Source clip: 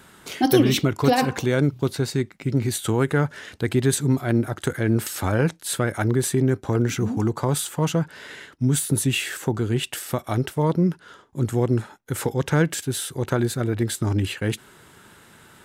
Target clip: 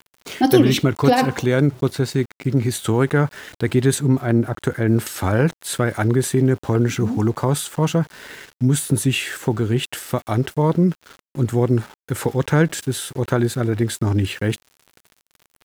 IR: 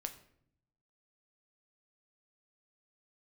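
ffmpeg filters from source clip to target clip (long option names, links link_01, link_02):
-filter_complex "[0:a]highshelf=frequency=3700:gain=-4,aeval=exprs='val(0)*gte(abs(val(0)),0.00794)':channel_layout=same,asplit=3[link_01][link_02][link_03];[link_01]afade=type=out:start_time=3.98:duration=0.02[link_04];[link_02]adynamicequalizer=threshold=0.00708:dfrequency=2100:dqfactor=0.7:tfrequency=2100:tqfactor=0.7:attack=5:release=100:ratio=0.375:range=3:mode=cutabove:tftype=highshelf,afade=type=in:start_time=3.98:duration=0.02,afade=type=out:start_time=4.87:duration=0.02[link_05];[link_03]afade=type=in:start_time=4.87:duration=0.02[link_06];[link_04][link_05][link_06]amix=inputs=3:normalize=0,volume=3.5dB"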